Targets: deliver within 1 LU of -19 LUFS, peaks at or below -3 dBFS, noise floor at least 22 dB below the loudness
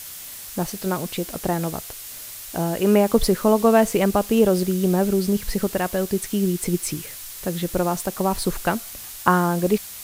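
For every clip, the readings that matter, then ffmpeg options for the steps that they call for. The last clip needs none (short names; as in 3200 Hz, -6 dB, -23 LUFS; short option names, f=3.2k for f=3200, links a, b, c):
noise floor -37 dBFS; noise floor target -44 dBFS; loudness -22.0 LUFS; peak -3.0 dBFS; loudness target -19.0 LUFS
-> -af "afftdn=nr=7:nf=-37"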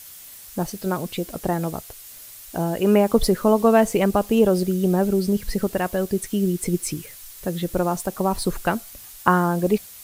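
noise floor -42 dBFS; noise floor target -44 dBFS
-> -af "afftdn=nr=6:nf=-42"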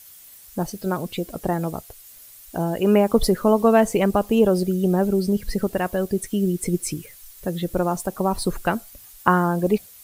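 noise floor -46 dBFS; loudness -22.0 LUFS; peak -2.5 dBFS; loudness target -19.0 LUFS
-> -af "volume=3dB,alimiter=limit=-3dB:level=0:latency=1"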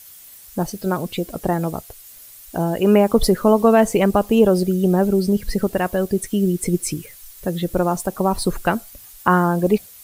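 loudness -19.5 LUFS; peak -3.0 dBFS; noise floor -43 dBFS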